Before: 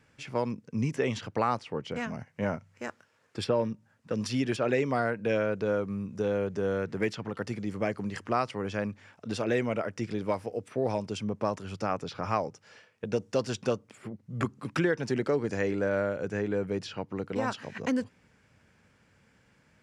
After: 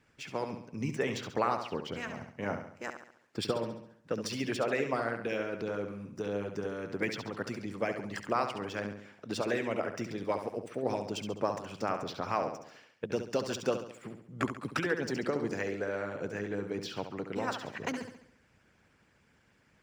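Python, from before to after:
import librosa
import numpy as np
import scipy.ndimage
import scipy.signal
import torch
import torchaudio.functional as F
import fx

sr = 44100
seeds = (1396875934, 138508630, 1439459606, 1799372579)

y = scipy.ndimage.median_filter(x, 3, mode='constant')
y = fx.room_flutter(y, sr, wall_m=11.8, rt60_s=0.66)
y = fx.hpss(y, sr, part='harmonic', gain_db=-12)
y = y * 10.0 ** (1.0 / 20.0)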